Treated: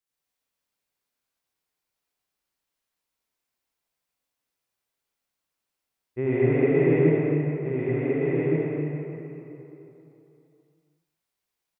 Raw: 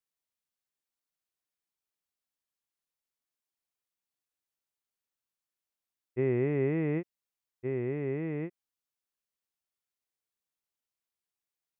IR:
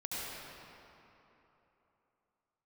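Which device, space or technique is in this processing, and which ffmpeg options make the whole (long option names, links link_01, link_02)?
cave: -filter_complex "[0:a]aecho=1:1:172:0.15[link_01];[1:a]atrim=start_sample=2205[link_02];[link_01][link_02]afir=irnorm=-1:irlink=0,volume=6dB"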